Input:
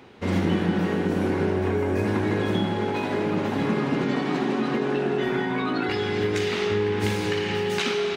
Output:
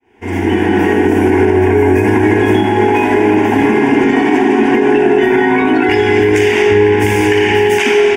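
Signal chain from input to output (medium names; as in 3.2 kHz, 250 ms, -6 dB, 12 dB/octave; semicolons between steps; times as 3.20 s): fade-in on the opening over 0.79 s; static phaser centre 830 Hz, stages 8; loudness maximiser +18.5 dB; trim -1 dB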